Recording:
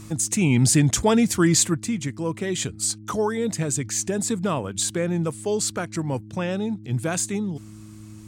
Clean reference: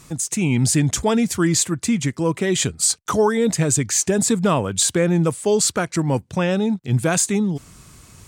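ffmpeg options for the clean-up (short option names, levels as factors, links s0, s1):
-af "bandreject=f=106.7:t=h:w=4,bandreject=f=213.4:t=h:w=4,bandreject=f=320.1:t=h:w=4,asetnsamples=n=441:p=0,asendcmd='1.77 volume volume 6.5dB',volume=1"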